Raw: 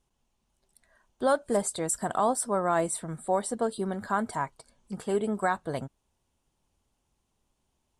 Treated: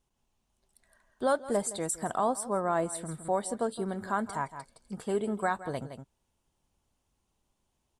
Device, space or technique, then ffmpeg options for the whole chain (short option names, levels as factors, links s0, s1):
ducked delay: -filter_complex "[0:a]asplit=3[s0][s1][s2];[s1]adelay=165,volume=0.562[s3];[s2]apad=whole_len=360025[s4];[s3][s4]sidechaincompress=threshold=0.01:ratio=8:attack=31:release=238[s5];[s0][s5]amix=inputs=2:normalize=0,asplit=3[s6][s7][s8];[s6]afade=t=out:st=1.9:d=0.02[s9];[s7]adynamicequalizer=threshold=0.0112:dfrequency=1700:dqfactor=0.7:tfrequency=1700:tqfactor=0.7:attack=5:release=100:ratio=0.375:range=3:mode=cutabove:tftype=highshelf,afade=t=in:st=1.9:d=0.02,afade=t=out:st=2.93:d=0.02[s10];[s8]afade=t=in:st=2.93:d=0.02[s11];[s9][s10][s11]amix=inputs=3:normalize=0,volume=0.75"